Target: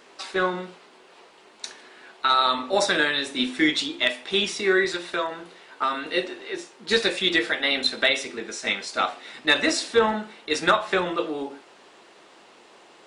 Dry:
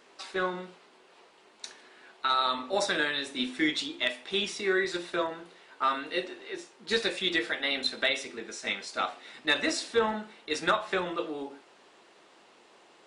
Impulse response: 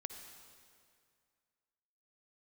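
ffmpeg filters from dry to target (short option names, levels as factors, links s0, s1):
-filter_complex "[0:a]asettb=1/sr,asplit=3[s0][s1][s2];[s0]atrim=end=4.934[s3];[s1]atrim=start=4.93:end=6.06,asetpts=PTS-STARTPTS,afade=t=in:d=0.004:c=qsin,afade=t=out:st=1.126:d=0.004:c=qsin,acrossover=split=600|4500[s4][s5][s6];[s4]acompressor=threshold=0.01:ratio=4[s7];[s5]acompressor=threshold=0.0355:ratio=4[s8];[s6]acompressor=threshold=0.00316:ratio=4[s9];[s7][s8][s9]amix=inputs=3:normalize=0[s10];[s2]atrim=start=6.056[s11];[s3][s10]acrossfade=d=0.004:c1=hsin:c2=qsin[s12];[s12][s11]acrossfade=d=0.004:c1=qsin:c2=hsin,volume=2.11"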